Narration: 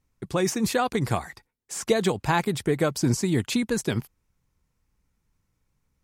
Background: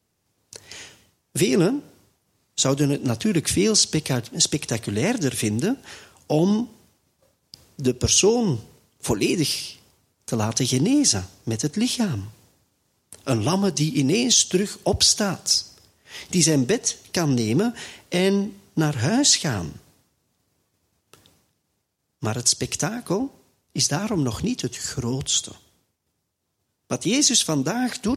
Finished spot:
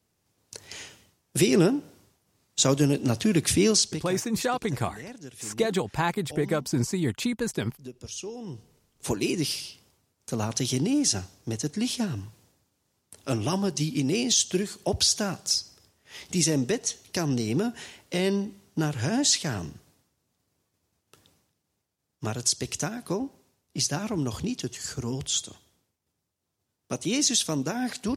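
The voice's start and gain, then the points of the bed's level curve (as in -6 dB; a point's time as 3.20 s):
3.70 s, -3.0 dB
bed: 3.70 s -1.5 dB
4.24 s -20 dB
8.29 s -20 dB
8.98 s -5.5 dB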